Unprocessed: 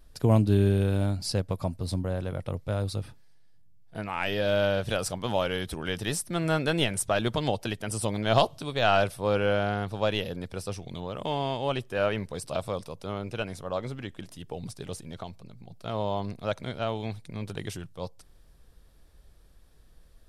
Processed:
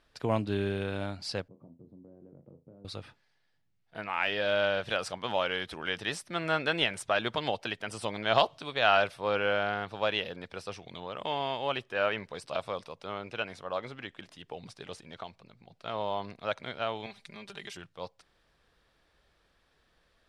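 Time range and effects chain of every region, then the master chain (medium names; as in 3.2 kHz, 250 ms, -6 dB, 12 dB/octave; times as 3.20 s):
1.48–2.85 s: compression, threshold -35 dBFS + Butterworth band-pass 220 Hz, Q 0.92 + flutter echo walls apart 6.1 m, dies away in 0.24 s
17.06–17.77 s: treble shelf 2.9 kHz +8.5 dB + compression 2:1, threshold -42 dBFS + comb 5 ms, depth 80%
whole clip: low-pass 2.4 kHz 12 dB/octave; tilt EQ +4 dB/octave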